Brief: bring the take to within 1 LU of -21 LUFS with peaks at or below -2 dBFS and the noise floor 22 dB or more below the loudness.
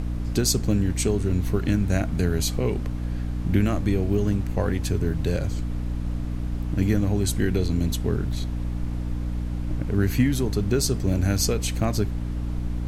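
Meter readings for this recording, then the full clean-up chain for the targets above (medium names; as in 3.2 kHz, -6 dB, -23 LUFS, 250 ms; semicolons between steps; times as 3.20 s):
hum 60 Hz; highest harmonic 300 Hz; hum level -26 dBFS; noise floor -29 dBFS; noise floor target -47 dBFS; loudness -25.0 LUFS; peak level -7.5 dBFS; loudness target -21.0 LUFS
-> de-hum 60 Hz, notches 5; noise print and reduce 18 dB; trim +4 dB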